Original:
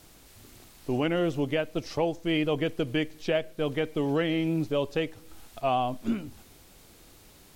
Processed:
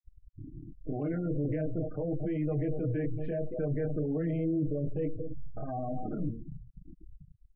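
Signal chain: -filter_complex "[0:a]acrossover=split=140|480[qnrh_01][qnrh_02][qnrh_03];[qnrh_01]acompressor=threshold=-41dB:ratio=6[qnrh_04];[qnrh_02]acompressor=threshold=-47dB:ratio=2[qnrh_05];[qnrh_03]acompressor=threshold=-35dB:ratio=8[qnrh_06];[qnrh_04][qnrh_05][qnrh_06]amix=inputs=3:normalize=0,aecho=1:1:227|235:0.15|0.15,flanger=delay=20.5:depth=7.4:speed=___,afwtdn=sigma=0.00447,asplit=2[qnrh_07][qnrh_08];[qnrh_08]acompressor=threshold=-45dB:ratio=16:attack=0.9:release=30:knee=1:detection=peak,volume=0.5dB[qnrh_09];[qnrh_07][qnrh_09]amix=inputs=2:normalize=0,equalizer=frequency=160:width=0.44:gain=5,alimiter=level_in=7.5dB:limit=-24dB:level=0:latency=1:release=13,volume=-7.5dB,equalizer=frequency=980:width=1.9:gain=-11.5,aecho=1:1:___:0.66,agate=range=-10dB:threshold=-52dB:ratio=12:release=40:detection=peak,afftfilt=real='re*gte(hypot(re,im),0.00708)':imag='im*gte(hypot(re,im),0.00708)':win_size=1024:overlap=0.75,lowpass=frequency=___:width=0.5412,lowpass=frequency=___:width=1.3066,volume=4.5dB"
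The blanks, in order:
0.41, 6.5, 1600, 1600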